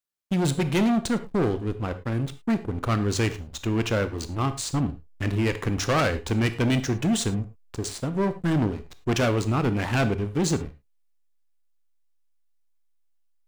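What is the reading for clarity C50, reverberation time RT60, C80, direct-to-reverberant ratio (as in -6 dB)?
13.5 dB, not exponential, 17.5 dB, 10.5 dB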